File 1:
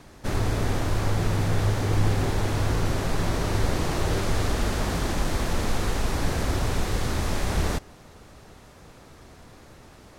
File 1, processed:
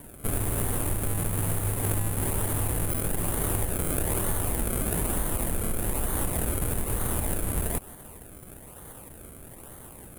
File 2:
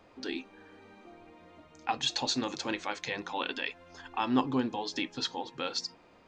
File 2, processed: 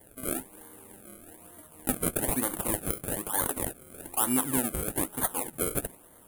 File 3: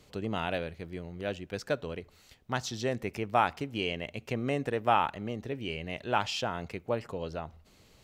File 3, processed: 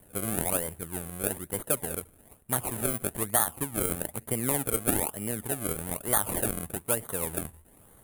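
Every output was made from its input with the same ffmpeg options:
-af "acrusher=samples=33:mix=1:aa=0.000001:lfo=1:lforange=33:lforate=1.1,acompressor=threshold=0.0501:ratio=6,highshelf=f=7500:t=q:w=3:g=13.5,volume=1.19"

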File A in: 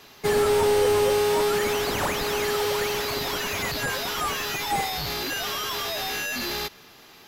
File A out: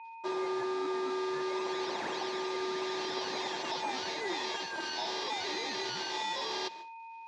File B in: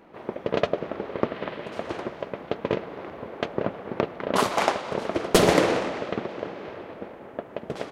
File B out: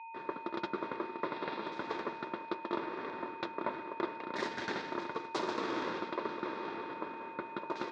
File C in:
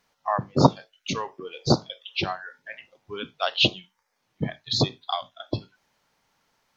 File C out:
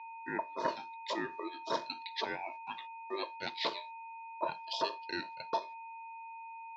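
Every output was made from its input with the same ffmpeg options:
-af "agate=range=0.00794:threshold=0.00501:ratio=16:detection=peak,areverse,acompressor=threshold=0.0316:ratio=8,areverse,asuperstop=centerf=2200:order=20:qfactor=7.1,aeval=exprs='val(0)+0.00631*sin(2*PI*1700*n/s)':c=same,aeval=exprs='val(0)*sin(2*PI*790*n/s)':c=same,highpass=250,equalizer=f=350:t=q:w=4:g=7,equalizer=f=870:t=q:w=4:g=7,equalizer=f=1300:t=q:w=4:g=-7,equalizer=f=2500:t=q:w=4:g=-5,equalizer=f=3800:t=q:w=4:g=3,lowpass=f=5900:w=0.5412,lowpass=f=5900:w=1.3066"

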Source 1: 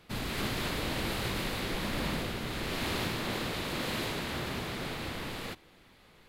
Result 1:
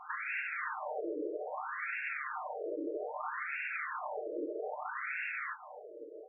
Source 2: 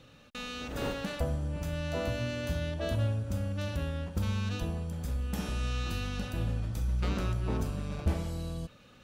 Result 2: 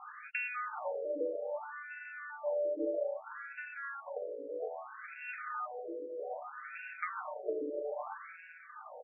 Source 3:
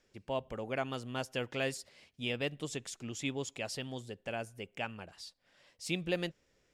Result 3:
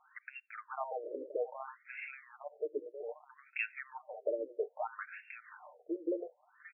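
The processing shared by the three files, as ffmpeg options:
-filter_complex "[0:a]aecho=1:1:6.6:0.71,acrossover=split=160[s0][s1];[s1]acompressor=threshold=0.00447:ratio=6[s2];[s0][s2]amix=inputs=2:normalize=0,aecho=1:1:530:0.237,afftfilt=real='re*between(b*sr/1024,420*pow(2000/420,0.5+0.5*sin(2*PI*0.62*pts/sr))/1.41,420*pow(2000/420,0.5+0.5*sin(2*PI*0.62*pts/sr))*1.41)':imag='im*between(b*sr/1024,420*pow(2000/420,0.5+0.5*sin(2*PI*0.62*pts/sr))/1.41,420*pow(2000/420,0.5+0.5*sin(2*PI*0.62*pts/sr))*1.41)':win_size=1024:overlap=0.75,volume=7.08"

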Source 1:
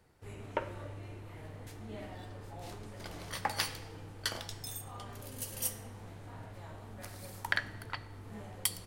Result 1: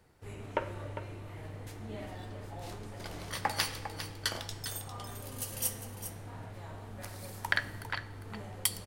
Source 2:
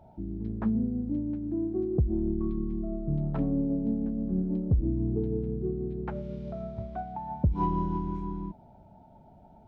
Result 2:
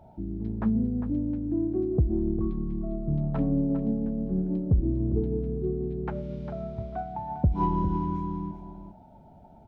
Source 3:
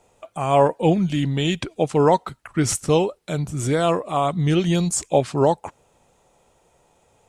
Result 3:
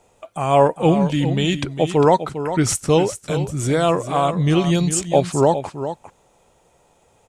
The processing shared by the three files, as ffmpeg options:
-af "aecho=1:1:402:0.299,volume=1.26"

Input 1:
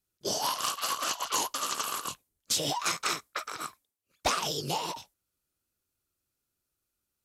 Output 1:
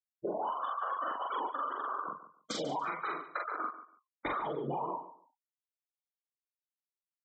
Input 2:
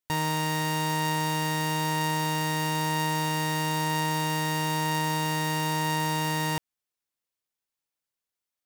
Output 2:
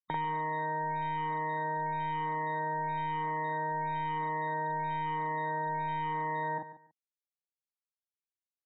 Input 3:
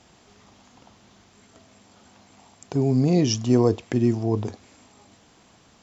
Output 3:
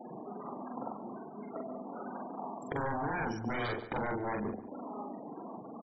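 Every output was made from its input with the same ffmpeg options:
-filter_complex "[0:a]acrossover=split=170|2200[s0][s1][s2];[s1]aeval=exprs='0.335*sin(PI/2*7.08*val(0)/0.335)':c=same[s3];[s0][s3][s2]amix=inputs=3:normalize=0,alimiter=limit=0.299:level=0:latency=1:release=478,acompressor=threshold=0.0447:ratio=16,asoftclip=type=tanh:threshold=0.237,afftfilt=real='re*gte(hypot(re,im),0.0355)':imag='im*gte(hypot(re,im),0.0355)':win_size=1024:overlap=0.75,asuperstop=centerf=2700:order=12:qfactor=5.4,asplit=2[s4][s5];[s5]adelay=43,volume=0.75[s6];[s4][s6]amix=inputs=2:normalize=0,asplit=2[s7][s8];[s8]aecho=0:1:143|286:0.2|0.0399[s9];[s7][s9]amix=inputs=2:normalize=0,volume=0.447"

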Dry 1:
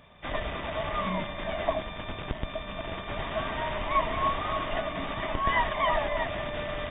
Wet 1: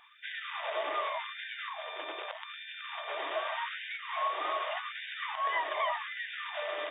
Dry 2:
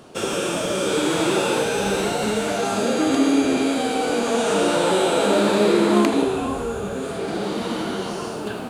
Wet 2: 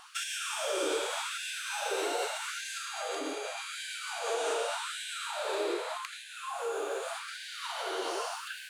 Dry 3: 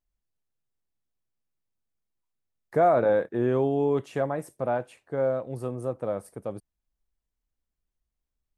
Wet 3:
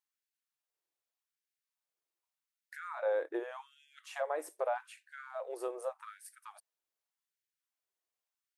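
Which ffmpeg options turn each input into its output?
-af "acompressor=threshold=0.0447:ratio=6,asubboost=boost=11.5:cutoff=70,afftfilt=real='re*gte(b*sr/1024,290*pow(1500/290,0.5+0.5*sin(2*PI*0.84*pts/sr)))':imag='im*gte(b*sr/1024,290*pow(1500/290,0.5+0.5*sin(2*PI*0.84*pts/sr)))':win_size=1024:overlap=0.75"

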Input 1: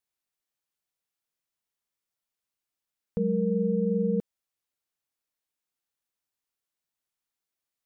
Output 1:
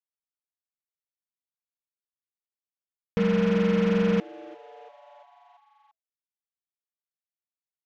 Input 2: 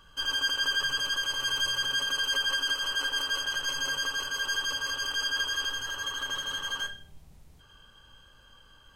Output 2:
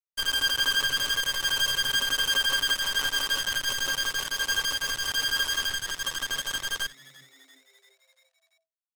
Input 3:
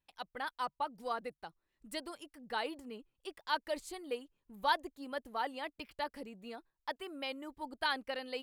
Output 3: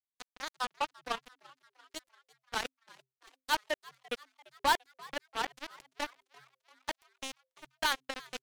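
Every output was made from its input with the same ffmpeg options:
-filter_complex "[0:a]acrusher=bits=4:mix=0:aa=0.5,asplit=6[s0][s1][s2][s3][s4][s5];[s1]adelay=342,afreqshift=130,volume=0.075[s6];[s2]adelay=684,afreqshift=260,volume=0.0457[s7];[s3]adelay=1026,afreqshift=390,volume=0.0279[s8];[s4]adelay=1368,afreqshift=520,volume=0.017[s9];[s5]adelay=1710,afreqshift=650,volume=0.0104[s10];[s0][s6][s7][s8][s9][s10]amix=inputs=6:normalize=0,volume=1.41"

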